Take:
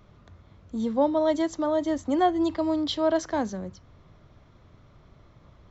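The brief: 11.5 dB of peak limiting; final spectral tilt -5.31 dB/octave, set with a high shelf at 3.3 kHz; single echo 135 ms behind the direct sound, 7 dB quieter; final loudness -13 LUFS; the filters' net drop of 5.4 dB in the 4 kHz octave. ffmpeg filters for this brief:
-af "highshelf=f=3300:g=-5,equalizer=f=4000:t=o:g=-3.5,alimiter=limit=0.0668:level=0:latency=1,aecho=1:1:135:0.447,volume=7.94"

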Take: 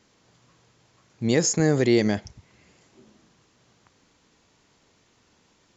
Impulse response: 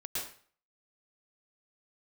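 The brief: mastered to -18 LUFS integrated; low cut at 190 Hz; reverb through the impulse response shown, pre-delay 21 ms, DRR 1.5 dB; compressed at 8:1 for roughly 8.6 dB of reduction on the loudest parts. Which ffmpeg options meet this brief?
-filter_complex "[0:a]highpass=190,acompressor=threshold=0.0631:ratio=8,asplit=2[s0][s1];[1:a]atrim=start_sample=2205,adelay=21[s2];[s1][s2]afir=irnorm=-1:irlink=0,volume=0.631[s3];[s0][s3]amix=inputs=2:normalize=0,volume=3.16"

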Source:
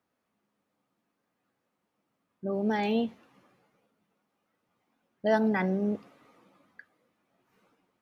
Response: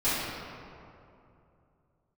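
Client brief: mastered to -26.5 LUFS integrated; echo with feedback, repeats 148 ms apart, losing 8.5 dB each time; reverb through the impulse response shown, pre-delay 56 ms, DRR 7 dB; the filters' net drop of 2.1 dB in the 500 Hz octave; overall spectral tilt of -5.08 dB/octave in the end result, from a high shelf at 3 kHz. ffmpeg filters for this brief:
-filter_complex "[0:a]equalizer=f=500:t=o:g=-3,highshelf=f=3000:g=4,aecho=1:1:148|296|444|592:0.376|0.143|0.0543|0.0206,asplit=2[s0][s1];[1:a]atrim=start_sample=2205,adelay=56[s2];[s1][s2]afir=irnorm=-1:irlink=0,volume=0.1[s3];[s0][s3]amix=inputs=2:normalize=0,volume=1.5"

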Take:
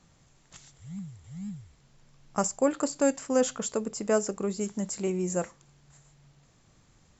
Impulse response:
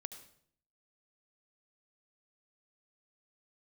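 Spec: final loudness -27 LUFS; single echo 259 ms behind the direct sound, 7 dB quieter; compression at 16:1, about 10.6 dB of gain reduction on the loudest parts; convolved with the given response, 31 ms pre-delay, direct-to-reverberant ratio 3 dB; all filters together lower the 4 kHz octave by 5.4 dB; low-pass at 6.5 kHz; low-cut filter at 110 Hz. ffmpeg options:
-filter_complex "[0:a]highpass=110,lowpass=6500,equalizer=f=4000:t=o:g=-6.5,acompressor=threshold=0.0355:ratio=16,aecho=1:1:259:0.447,asplit=2[s0][s1];[1:a]atrim=start_sample=2205,adelay=31[s2];[s1][s2]afir=irnorm=-1:irlink=0,volume=1.06[s3];[s0][s3]amix=inputs=2:normalize=0,volume=2.37"

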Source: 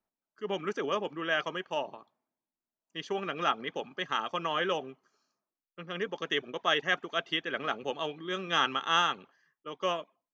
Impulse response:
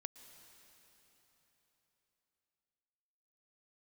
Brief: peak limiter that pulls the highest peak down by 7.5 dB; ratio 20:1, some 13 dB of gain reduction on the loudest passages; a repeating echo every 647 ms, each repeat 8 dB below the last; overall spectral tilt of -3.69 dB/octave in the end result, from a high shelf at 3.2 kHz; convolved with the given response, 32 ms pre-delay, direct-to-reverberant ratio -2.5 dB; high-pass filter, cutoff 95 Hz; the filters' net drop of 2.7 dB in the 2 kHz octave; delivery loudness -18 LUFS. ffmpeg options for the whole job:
-filter_complex "[0:a]highpass=95,equalizer=f=2000:t=o:g=-6,highshelf=f=3200:g=7,acompressor=threshold=0.02:ratio=20,alimiter=level_in=1.68:limit=0.0631:level=0:latency=1,volume=0.596,aecho=1:1:647|1294|1941|2588|3235:0.398|0.159|0.0637|0.0255|0.0102,asplit=2[s0][s1];[1:a]atrim=start_sample=2205,adelay=32[s2];[s1][s2]afir=irnorm=-1:irlink=0,volume=2.24[s3];[s0][s3]amix=inputs=2:normalize=0,volume=8.91"

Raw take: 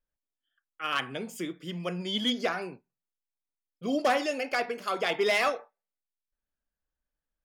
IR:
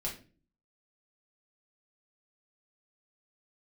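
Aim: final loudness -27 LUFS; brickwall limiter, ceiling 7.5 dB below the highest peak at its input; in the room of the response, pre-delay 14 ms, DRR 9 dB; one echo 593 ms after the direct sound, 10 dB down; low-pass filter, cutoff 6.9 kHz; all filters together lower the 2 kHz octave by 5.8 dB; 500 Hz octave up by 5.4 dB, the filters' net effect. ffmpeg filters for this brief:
-filter_complex "[0:a]lowpass=6900,equalizer=f=500:t=o:g=7,equalizer=f=2000:t=o:g=-7.5,alimiter=limit=0.112:level=0:latency=1,aecho=1:1:593:0.316,asplit=2[s0][s1];[1:a]atrim=start_sample=2205,adelay=14[s2];[s1][s2]afir=irnorm=-1:irlink=0,volume=0.282[s3];[s0][s3]amix=inputs=2:normalize=0,volume=1.41"

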